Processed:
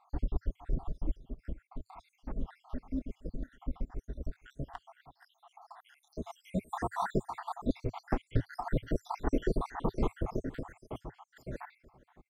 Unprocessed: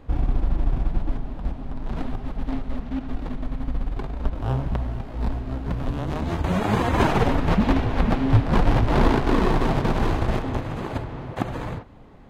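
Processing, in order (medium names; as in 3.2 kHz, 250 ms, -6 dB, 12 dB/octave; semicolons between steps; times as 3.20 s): random holes in the spectrogram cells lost 79%; graphic EQ with 31 bands 100 Hz -10 dB, 400 Hz +4 dB, 2.5 kHz -10 dB, 4 kHz -7 dB; delay 472 ms -22.5 dB; trim -6.5 dB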